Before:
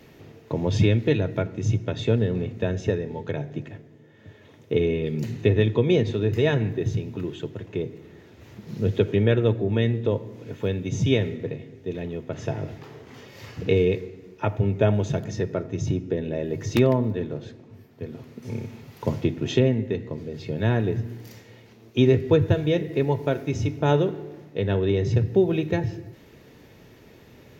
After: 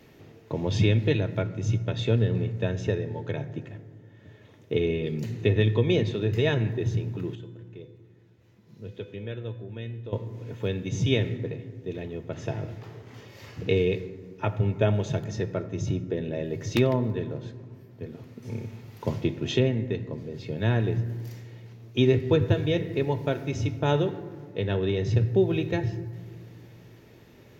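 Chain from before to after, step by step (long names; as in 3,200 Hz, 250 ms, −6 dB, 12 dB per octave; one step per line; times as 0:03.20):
dynamic equaliser 3,400 Hz, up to +4 dB, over −44 dBFS, Q 0.82
0:07.35–0:10.13: tuned comb filter 500 Hz, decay 0.66 s, mix 80%
convolution reverb RT60 2.1 s, pre-delay 4 ms, DRR 13.5 dB
level −3.5 dB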